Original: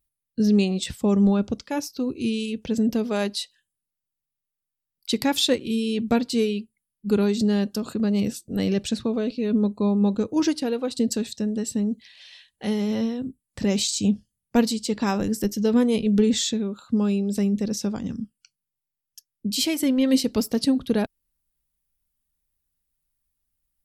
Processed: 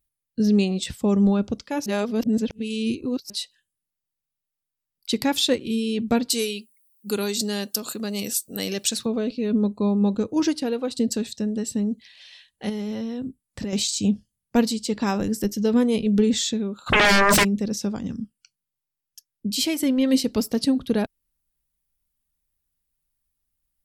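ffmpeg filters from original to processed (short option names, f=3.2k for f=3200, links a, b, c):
-filter_complex "[0:a]asettb=1/sr,asplit=3[a][b][c];[a]atrim=end=6.304[d];[b]atrim=start=6.3:end=9.06,asetpts=PTS-STARTPTS,afade=t=in:d=0.004:c=qsin,afade=t=out:st=2.756:d=0.004:c=qsin,aemphasis=mode=production:type=riaa[e];[c]atrim=start=9.056[f];[d][e]acrossfade=d=0.004:c1=hsin:c2=qsin[g];[g][f]acrossfade=d=0.004:c1=qsin:c2=hsin,asettb=1/sr,asplit=3[h][i][j];[h]atrim=end=12.694[k];[i]atrim=start=12.69:end=13.73,asetpts=PTS-STARTPTS,afade=t=in:d=0.004:c=qsin,afade=t=out:st=1.036:d=0.004:c=qsin,acompressor=threshold=-25dB:ratio=6:attack=3.2:release=140:knee=1:detection=peak[l];[j]atrim=start=13.726[m];[k][l]acrossfade=d=0.004:c1=hsin:c2=qsin[n];[n][m]acrossfade=d=0.004:c1=qsin:c2=hsin,asplit=3[o][p][q];[o]afade=t=out:st=16.86:d=0.02[r];[p]aeval=exprs='0.224*sin(PI/2*10*val(0)/0.224)':c=same,afade=t=in:st=16.86:d=0.02,afade=t=out:st=17.43:d=0.02[s];[q]afade=t=in:st=17.43:d=0.02[t];[r][s][t]amix=inputs=3:normalize=0,asplit=3[u][v][w];[u]atrim=end=1.862[x];[v]atrim=start=1.858:end=3.302,asetpts=PTS-STARTPTS,areverse[y];[w]atrim=start=3.298[z];[x][y]acrossfade=d=0.004:c1=hsin:c2=hsin[aa];[aa][z]acrossfade=d=0.004:c1=hsin:c2=hsin"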